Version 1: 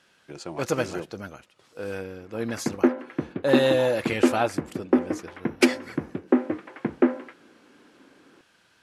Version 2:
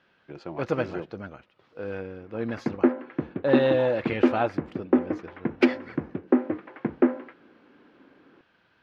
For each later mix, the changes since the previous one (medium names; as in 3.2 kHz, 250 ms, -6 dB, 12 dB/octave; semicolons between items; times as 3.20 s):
master: add distance through air 300 m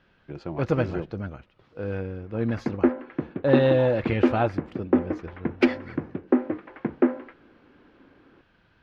speech: remove high-pass 330 Hz 6 dB/octave